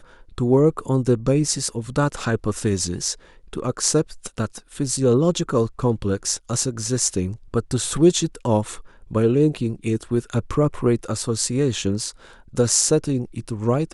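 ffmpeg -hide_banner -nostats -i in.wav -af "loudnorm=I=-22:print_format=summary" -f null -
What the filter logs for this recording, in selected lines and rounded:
Input Integrated:    -21.8 LUFS
Input True Peak:      -2.3 dBTP
Input LRA:             1.2 LU
Input Threshold:     -32.0 LUFS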